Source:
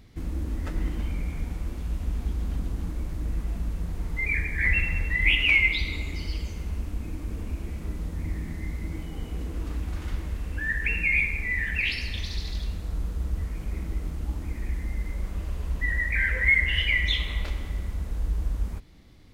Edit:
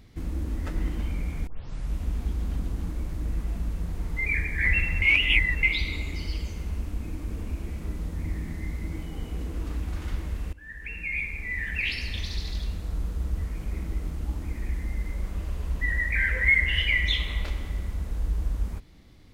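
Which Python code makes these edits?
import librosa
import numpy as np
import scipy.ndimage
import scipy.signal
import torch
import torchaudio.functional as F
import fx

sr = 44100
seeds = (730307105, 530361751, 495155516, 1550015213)

y = fx.edit(x, sr, fx.tape_start(start_s=1.47, length_s=0.48),
    fx.reverse_span(start_s=5.02, length_s=0.61),
    fx.fade_in_from(start_s=10.53, length_s=1.64, floor_db=-20.5), tone=tone)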